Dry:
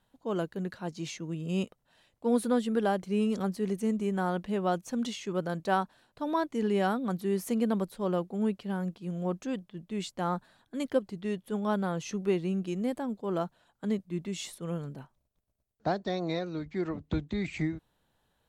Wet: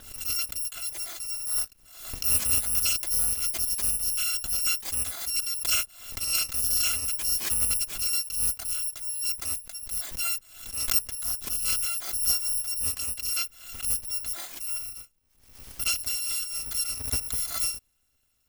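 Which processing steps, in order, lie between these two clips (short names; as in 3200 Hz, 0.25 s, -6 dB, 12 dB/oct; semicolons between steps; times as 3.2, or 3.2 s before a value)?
FFT order left unsorted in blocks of 256 samples; backwards sustainer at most 75 dB/s; gain +2 dB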